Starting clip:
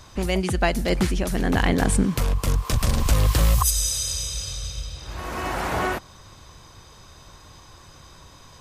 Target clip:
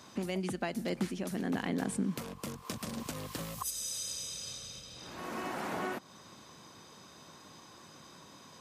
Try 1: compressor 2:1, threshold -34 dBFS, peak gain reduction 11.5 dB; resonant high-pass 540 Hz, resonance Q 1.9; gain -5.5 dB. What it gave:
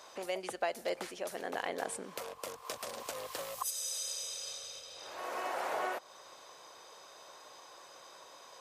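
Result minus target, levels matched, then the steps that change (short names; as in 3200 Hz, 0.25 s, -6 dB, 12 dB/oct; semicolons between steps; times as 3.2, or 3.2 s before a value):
250 Hz band -13.0 dB
change: resonant high-pass 210 Hz, resonance Q 1.9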